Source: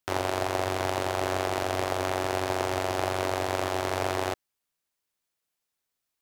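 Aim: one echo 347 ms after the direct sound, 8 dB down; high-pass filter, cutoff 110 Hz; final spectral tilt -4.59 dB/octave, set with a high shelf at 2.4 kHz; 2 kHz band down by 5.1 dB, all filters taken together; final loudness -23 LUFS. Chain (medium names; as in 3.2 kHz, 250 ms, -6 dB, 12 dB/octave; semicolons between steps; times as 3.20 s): high-pass 110 Hz; peaking EQ 2 kHz -3.5 dB; treble shelf 2.4 kHz -6.5 dB; delay 347 ms -8 dB; trim +7.5 dB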